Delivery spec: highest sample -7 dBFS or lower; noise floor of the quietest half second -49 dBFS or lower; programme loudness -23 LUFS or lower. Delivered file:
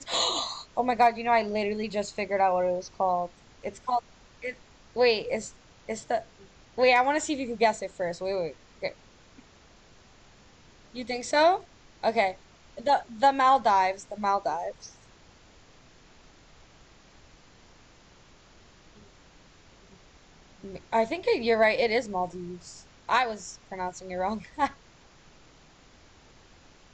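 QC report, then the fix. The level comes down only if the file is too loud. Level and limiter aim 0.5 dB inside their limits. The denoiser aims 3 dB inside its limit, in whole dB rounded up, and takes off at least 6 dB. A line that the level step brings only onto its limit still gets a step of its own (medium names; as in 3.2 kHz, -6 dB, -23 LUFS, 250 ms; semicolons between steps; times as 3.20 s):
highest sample -11.0 dBFS: pass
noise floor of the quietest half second -56 dBFS: pass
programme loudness -27.0 LUFS: pass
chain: none needed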